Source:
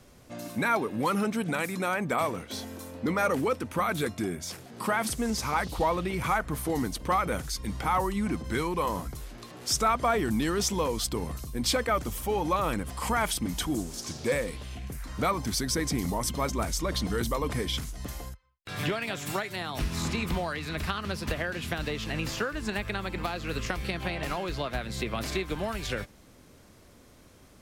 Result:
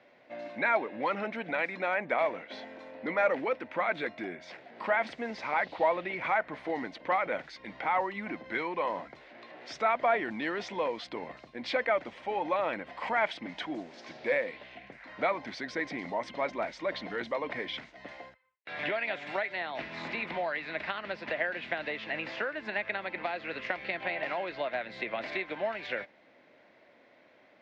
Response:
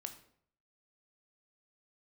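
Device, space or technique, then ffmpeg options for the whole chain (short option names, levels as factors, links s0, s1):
phone earpiece: -af "highpass=410,equalizer=f=420:t=q:w=4:g=-5,equalizer=f=620:t=q:w=4:g=5,equalizer=f=1200:t=q:w=4:g=-8,equalizer=f=2000:t=q:w=4:g=6,equalizer=f=3100:t=q:w=4:g=-4,lowpass=f=3300:w=0.5412,lowpass=f=3300:w=1.3066"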